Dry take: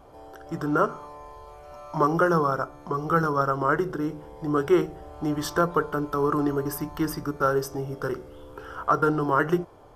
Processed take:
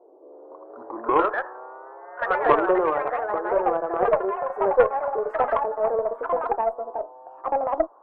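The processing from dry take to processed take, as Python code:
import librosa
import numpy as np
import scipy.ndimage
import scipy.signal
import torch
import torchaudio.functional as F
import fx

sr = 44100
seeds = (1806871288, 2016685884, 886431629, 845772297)

y = fx.speed_glide(x, sr, from_pct=61, to_pct=187)
y = scipy.signal.sosfilt(scipy.signal.ellip(3, 1.0, 40, [340.0, 1100.0], 'bandpass', fs=sr, output='sos'), y)
y = fx.echo_pitch(y, sr, ms=325, semitones=4, count=2, db_per_echo=-3.0)
y = fx.cheby_harmonics(y, sr, harmonics=(2, 3), levels_db=(-17, -18), full_scale_db=-9.0)
y = y * 10.0 ** (6.0 / 20.0)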